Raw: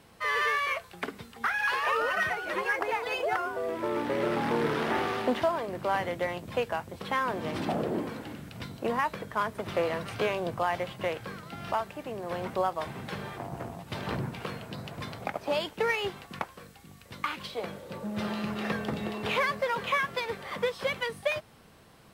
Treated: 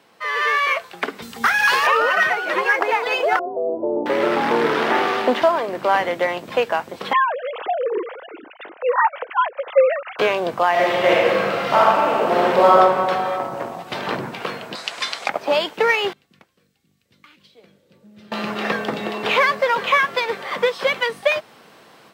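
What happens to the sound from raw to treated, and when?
0:01.22–0:01.87: bass and treble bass +15 dB, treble +11 dB
0:03.39–0:04.06: Butterworth low-pass 790 Hz 48 dB per octave
0:07.13–0:10.19: three sine waves on the formant tracks
0:10.71–0:12.76: thrown reverb, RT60 2.3 s, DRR −7 dB
0:14.75–0:15.29: meter weighting curve ITU-R 468
0:16.13–0:18.32: guitar amp tone stack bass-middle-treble 10-0-1
whole clip: Bessel high-pass filter 340 Hz, order 2; parametric band 11,000 Hz −8.5 dB 1 octave; automatic gain control gain up to 7.5 dB; level +4 dB

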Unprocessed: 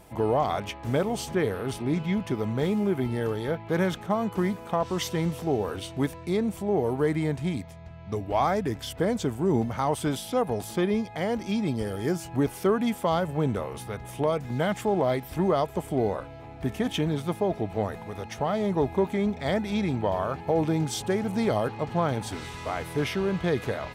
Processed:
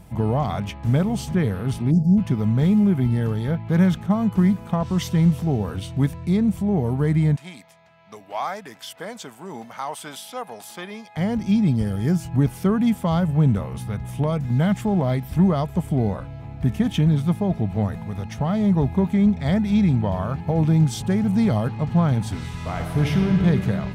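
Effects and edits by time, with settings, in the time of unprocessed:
0:01.91–0:02.18: time-frequency box erased 840–4,500 Hz
0:07.36–0:11.17: high-pass filter 700 Hz
0:22.52–0:23.36: thrown reverb, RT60 2.7 s, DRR 2.5 dB
whole clip: low shelf with overshoot 260 Hz +9.5 dB, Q 1.5

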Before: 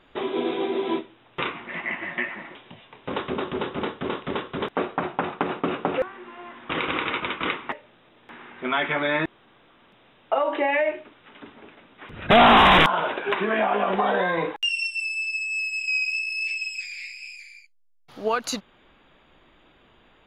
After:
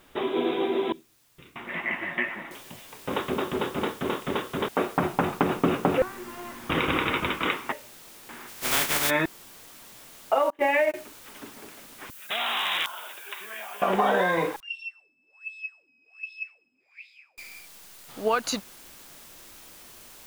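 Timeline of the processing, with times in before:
0:00.92–0:01.56: guitar amp tone stack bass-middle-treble 10-0-1
0:02.51: noise floor change −64 dB −49 dB
0:04.97–0:07.39: low-shelf EQ 200 Hz +11 dB
0:08.47–0:09.09: compressing power law on the bin magnitudes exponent 0.25
0:10.50–0:10.94: noise gate −25 dBFS, range −32 dB
0:12.10–0:13.82: first difference
0:14.60–0:17.38: LFO wah 1.3 Hz 240–3,700 Hz, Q 12

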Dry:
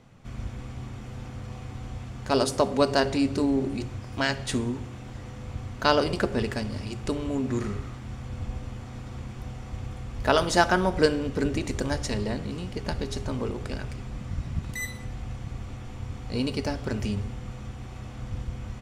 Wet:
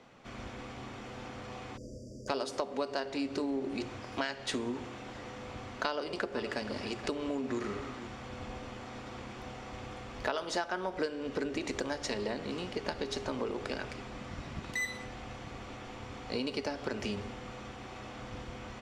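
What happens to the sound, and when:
0:01.77–0:02.28: time-frequency box erased 660–4,600 Hz
0:05.88–0:08.07: single-tap delay 475 ms −17.5 dB
whole clip: three-way crossover with the lows and the highs turned down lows −17 dB, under 260 Hz, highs −13 dB, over 6,400 Hz; downward compressor 8 to 1, threshold −33 dBFS; level +2.5 dB

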